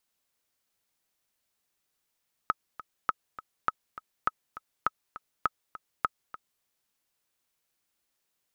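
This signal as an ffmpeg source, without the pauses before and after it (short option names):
-f lavfi -i "aevalsrc='pow(10,(-11-16*gte(mod(t,2*60/203),60/203))/20)*sin(2*PI*1280*mod(t,60/203))*exp(-6.91*mod(t,60/203)/0.03)':d=4.13:s=44100"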